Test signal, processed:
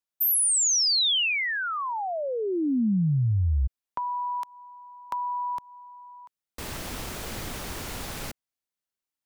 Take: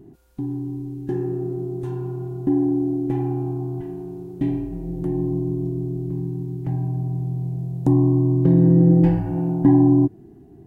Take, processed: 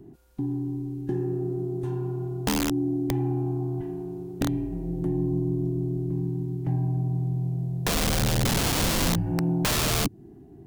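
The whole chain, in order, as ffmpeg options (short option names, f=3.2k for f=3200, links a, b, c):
-filter_complex "[0:a]aeval=exprs='(mod(4.73*val(0)+1,2)-1)/4.73':c=same,acrossover=split=270|3000[a][b][c];[b]acompressor=threshold=-28dB:ratio=6[d];[a][d][c]amix=inputs=3:normalize=0,volume=-1.5dB"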